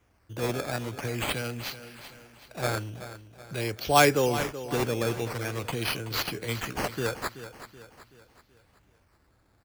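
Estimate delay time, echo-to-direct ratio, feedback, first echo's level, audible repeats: 0.378 s, -12.0 dB, 46%, -13.0 dB, 4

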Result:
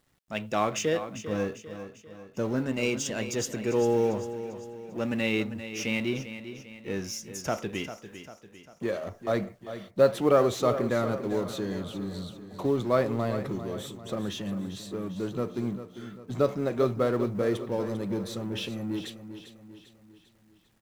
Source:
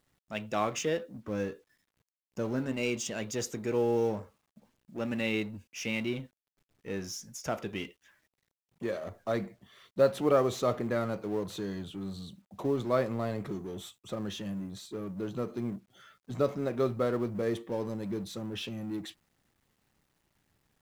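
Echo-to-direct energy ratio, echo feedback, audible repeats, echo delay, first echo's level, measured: -10.5 dB, 48%, 4, 0.397 s, -11.5 dB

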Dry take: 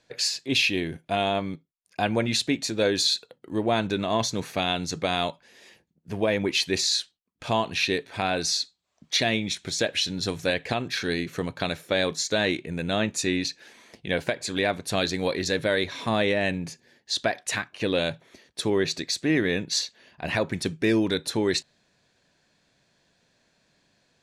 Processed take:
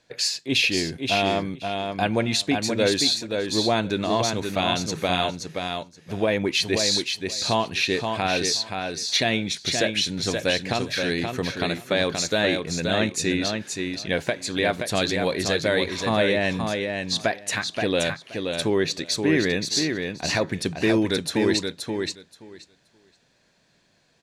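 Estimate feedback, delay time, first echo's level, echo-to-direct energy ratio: 15%, 0.526 s, -5.0 dB, -5.0 dB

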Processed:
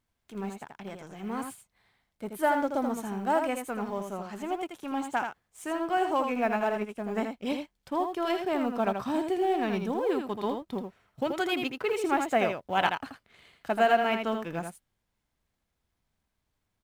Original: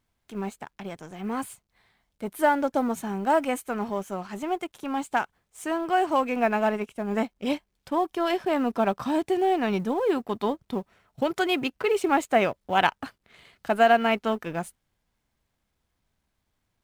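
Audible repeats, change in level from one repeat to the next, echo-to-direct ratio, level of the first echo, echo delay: 1, no steady repeat, -6.0 dB, -6.0 dB, 81 ms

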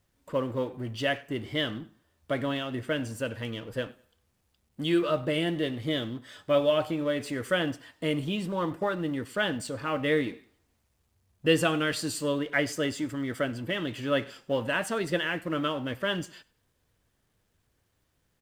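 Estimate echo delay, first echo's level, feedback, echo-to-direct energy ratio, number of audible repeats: 99 ms, -23.0 dB, 27%, -22.5 dB, 2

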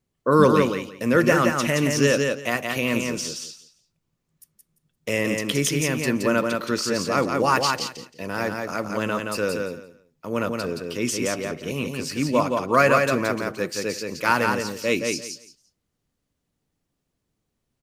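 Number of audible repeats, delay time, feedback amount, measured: 3, 0.172 s, 19%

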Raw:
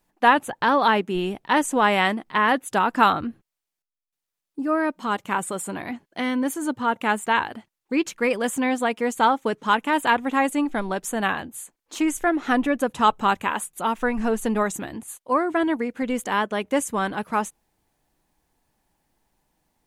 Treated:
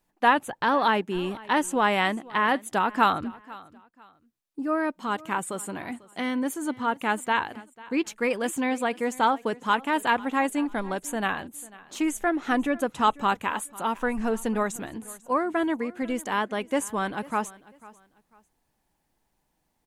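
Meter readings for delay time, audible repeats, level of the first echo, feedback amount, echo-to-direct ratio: 0.495 s, 2, -21.0 dB, 28%, -20.5 dB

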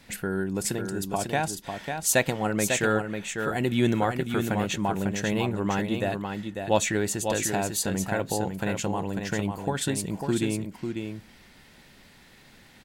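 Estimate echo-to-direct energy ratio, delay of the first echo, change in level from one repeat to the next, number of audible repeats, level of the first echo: -6.0 dB, 0.547 s, no steady repeat, 1, -6.0 dB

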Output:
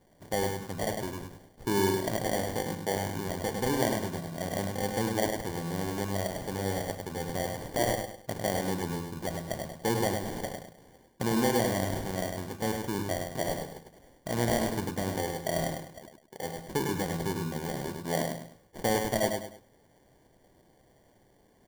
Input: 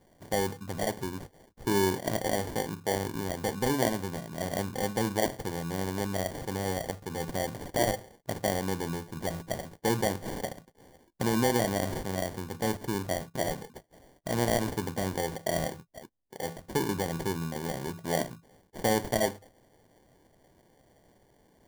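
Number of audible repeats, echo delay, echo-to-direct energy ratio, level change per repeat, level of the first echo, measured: 3, 0.102 s, -4.5 dB, -9.5 dB, -5.0 dB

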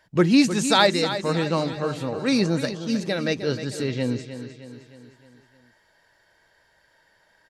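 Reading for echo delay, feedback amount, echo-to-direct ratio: 0.309 s, 51%, -9.5 dB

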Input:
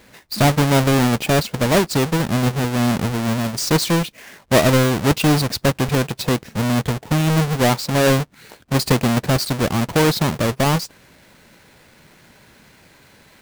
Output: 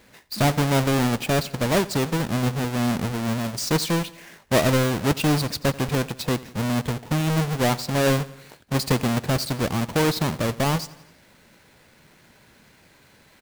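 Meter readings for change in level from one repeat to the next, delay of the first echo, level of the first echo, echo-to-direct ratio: -5.0 dB, 87 ms, -19.5 dB, -18.0 dB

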